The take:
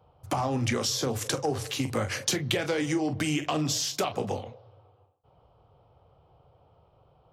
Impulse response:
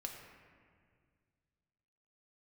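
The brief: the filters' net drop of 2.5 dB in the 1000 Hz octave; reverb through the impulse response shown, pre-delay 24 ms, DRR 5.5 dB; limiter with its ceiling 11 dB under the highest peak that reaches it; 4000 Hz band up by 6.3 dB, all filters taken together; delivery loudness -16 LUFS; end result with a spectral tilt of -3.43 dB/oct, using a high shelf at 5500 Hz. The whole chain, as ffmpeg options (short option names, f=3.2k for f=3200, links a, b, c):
-filter_complex "[0:a]equalizer=f=1k:t=o:g=-4,equalizer=f=4k:t=o:g=7,highshelf=f=5.5k:g=3.5,alimiter=limit=-16.5dB:level=0:latency=1,asplit=2[a][b];[1:a]atrim=start_sample=2205,adelay=24[c];[b][c]afir=irnorm=-1:irlink=0,volume=-3.5dB[d];[a][d]amix=inputs=2:normalize=0,volume=11dB"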